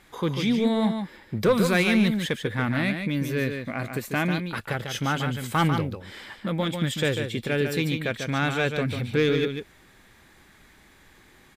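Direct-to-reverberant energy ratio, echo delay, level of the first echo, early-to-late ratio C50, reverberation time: no reverb, 145 ms, -6.5 dB, no reverb, no reverb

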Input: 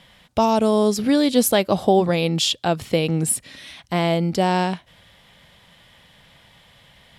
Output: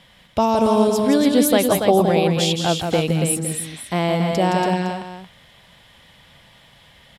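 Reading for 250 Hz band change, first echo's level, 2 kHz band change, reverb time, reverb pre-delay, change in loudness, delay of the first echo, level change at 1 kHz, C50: +2.0 dB, -6.0 dB, +1.5 dB, no reverb, no reverb, +1.5 dB, 168 ms, +1.5 dB, no reverb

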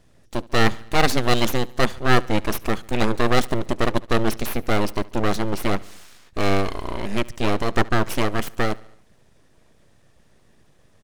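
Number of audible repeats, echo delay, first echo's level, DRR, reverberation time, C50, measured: 3, 71 ms, -23.0 dB, no reverb, no reverb, no reverb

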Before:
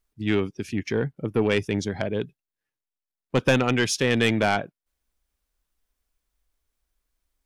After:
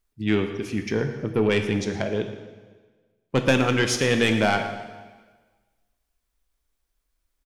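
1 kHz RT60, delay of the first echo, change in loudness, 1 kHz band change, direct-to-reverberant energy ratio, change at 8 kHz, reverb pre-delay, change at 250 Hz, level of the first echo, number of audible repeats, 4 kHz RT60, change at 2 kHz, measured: 1.4 s, 116 ms, +1.0 dB, +1.0 dB, 5.5 dB, +1.0 dB, 6 ms, +1.0 dB, -15.5 dB, 1, 1.3 s, +1.0 dB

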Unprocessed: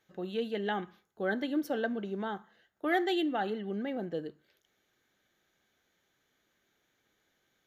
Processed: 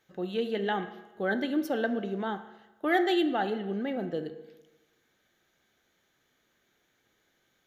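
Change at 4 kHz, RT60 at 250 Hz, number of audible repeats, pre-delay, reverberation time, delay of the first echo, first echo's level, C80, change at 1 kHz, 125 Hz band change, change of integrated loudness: +3.0 dB, 1.2 s, no echo, 9 ms, 1.1 s, no echo, no echo, 14.5 dB, +3.5 dB, +3.0 dB, +3.5 dB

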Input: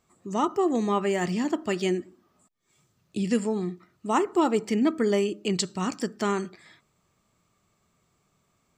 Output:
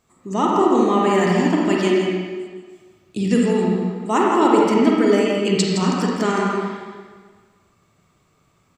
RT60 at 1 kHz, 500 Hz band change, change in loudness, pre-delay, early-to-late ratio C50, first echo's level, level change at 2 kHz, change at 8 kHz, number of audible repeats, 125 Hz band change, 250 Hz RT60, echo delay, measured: 1.5 s, +8.5 dB, +8.5 dB, 35 ms, -2.5 dB, -6.5 dB, +9.0 dB, +5.0 dB, 1, +10.0 dB, 1.5 s, 165 ms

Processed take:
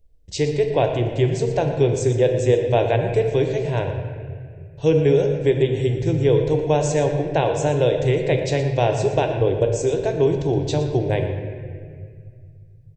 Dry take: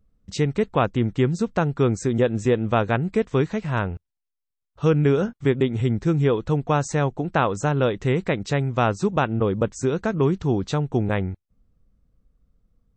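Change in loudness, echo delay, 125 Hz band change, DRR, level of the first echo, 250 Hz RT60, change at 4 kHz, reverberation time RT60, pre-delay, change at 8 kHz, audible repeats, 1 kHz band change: +2.5 dB, 117 ms, +1.5 dB, 3.5 dB, -12.5 dB, 2.6 s, +3.5 dB, 2.0 s, 3 ms, +4.5 dB, 1, -0.5 dB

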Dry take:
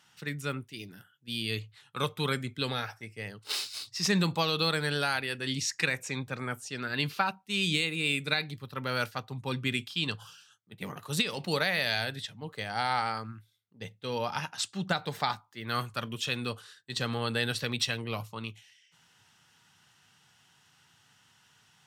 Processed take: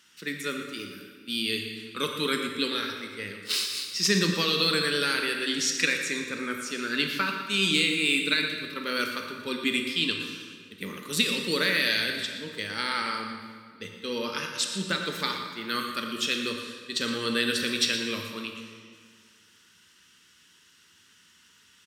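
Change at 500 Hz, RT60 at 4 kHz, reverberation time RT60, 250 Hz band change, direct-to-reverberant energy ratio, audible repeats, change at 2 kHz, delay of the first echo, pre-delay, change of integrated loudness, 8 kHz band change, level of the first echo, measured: +3.0 dB, 1.5 s, 1.9 s, +4.5 dB, 2.5 dB, 1, +5.0 dB, 117 ms, 23 ms, +4.5 dB, +6.0 dB, -11.0 dB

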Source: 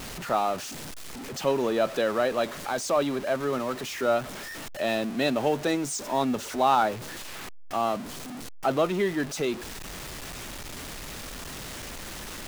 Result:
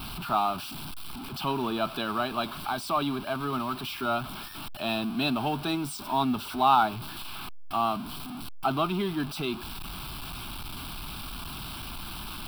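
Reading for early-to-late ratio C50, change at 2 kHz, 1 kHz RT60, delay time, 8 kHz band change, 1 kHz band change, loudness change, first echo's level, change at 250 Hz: no reverb, -2.5 dB, no reverb, no echo, -7.5 dB, +1.0 dB, -2.0 dB, no echo, -0.5 dB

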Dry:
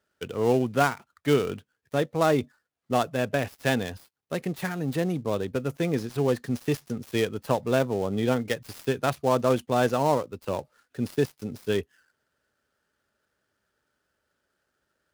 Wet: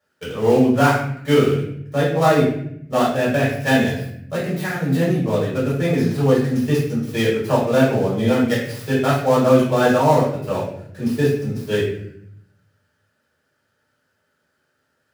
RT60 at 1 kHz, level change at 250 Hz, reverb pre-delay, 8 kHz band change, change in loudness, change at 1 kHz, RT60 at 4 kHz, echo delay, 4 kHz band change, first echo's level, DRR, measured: 0.60 s, +9.5 dB, 3 ms, +5.5 dB, +8.5 dB, +7.0 dB, 0.55 s, no echo, +7.0 dB, no echo, -8.5 dB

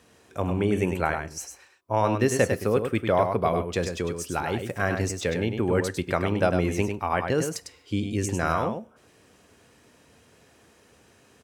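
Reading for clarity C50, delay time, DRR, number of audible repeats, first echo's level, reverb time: no reverb, 101 ms, no reverb, 1, -6.5 dB, no reverb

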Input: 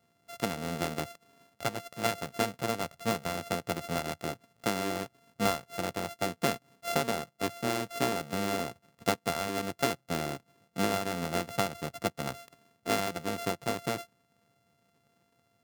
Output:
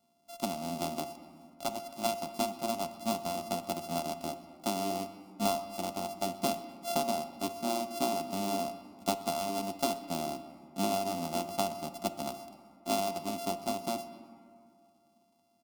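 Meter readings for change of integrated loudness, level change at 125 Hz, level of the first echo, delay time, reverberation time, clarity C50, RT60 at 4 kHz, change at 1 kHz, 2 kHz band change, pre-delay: -1.5 dB, -6.5 dB, -21.0 dB, 125 ms, 2.3 s, 11.0 dB, 1.2 s, 0.0 dB, -9.5 dB, 5 ms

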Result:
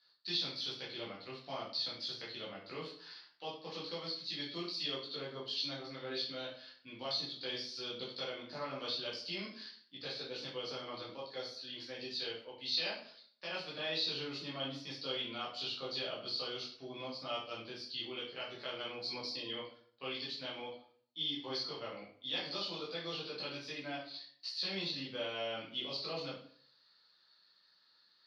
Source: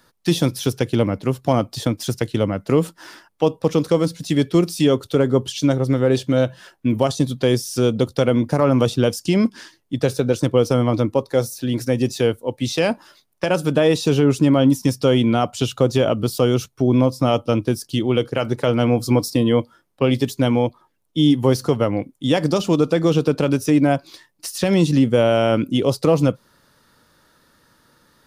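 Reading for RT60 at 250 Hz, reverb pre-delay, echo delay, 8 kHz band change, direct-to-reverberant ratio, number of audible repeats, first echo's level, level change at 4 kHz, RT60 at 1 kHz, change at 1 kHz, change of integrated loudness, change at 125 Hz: 0.60 s, 10 ms, no echo, -26.0 dB, -7.0 dB, no echo, no echo, -7.0 dB, 0.50 s, -20.0 dB, -20.5 dB, -33.5 dB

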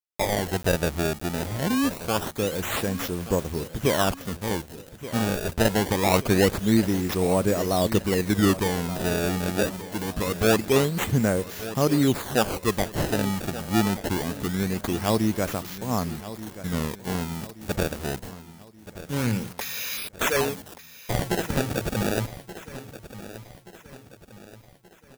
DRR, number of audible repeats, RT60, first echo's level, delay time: no reverb, 4, no reverb, -14.5 dB, 1178 ms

